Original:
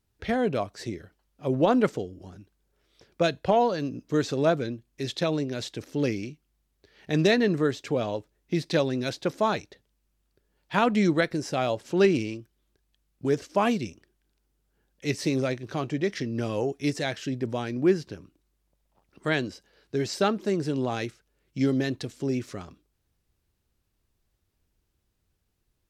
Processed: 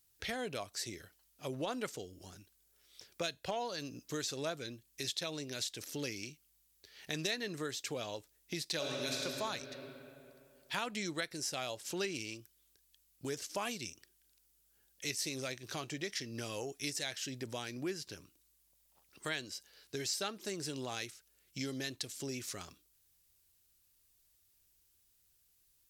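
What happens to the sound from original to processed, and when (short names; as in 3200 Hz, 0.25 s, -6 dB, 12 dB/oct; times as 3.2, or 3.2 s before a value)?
8.76–9.18 reverb throw, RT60 2.6 s, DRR -3 dB
whole clip: pre-emphasis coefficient 0.9; compressor 2.5:1, threshold -49 dBFS; bell 210 Hz -2.5 dB 0.82 oct; gain +10.5 dB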